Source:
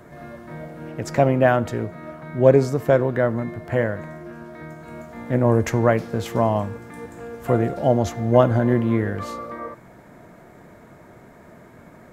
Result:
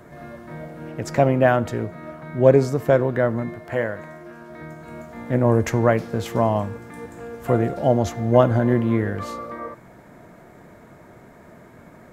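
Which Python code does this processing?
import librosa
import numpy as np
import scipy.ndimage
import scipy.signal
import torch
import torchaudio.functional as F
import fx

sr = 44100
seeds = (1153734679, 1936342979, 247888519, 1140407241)

y = fx.low_shelf(x, sr, hz=270.0, db=-8.5, at=(3.55, 4.5))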